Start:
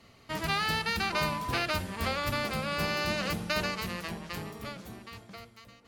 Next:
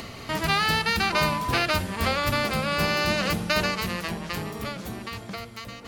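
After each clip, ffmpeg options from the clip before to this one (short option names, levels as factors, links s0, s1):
-af "acompressor=mode=upward:threshold=0.02:ratio=2.5,volume=2.11"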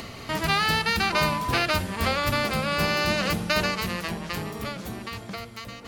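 -af anull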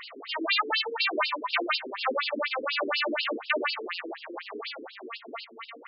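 -af "afftfilt=real='re*between(b*sr/1024,320*pow(3900/320,0.5+0.5*sin(2*PI*4.1*pts/sr))/1.41,320*pow(3900/320,0.5+0.5*sin(2*PI*4.1*pts/sr))*1.41)':imag='im*between(b*sr/1024,320*pow(3900/320,0.5+0.5*sin(2*PI*4.1*pts/sr))/1.41,320*pow(3900/320,0.5+0.5*sin(2*PI*4.1*pts/sr))*1.41)':win_size=1024:overlap=0.75,volume=1.58"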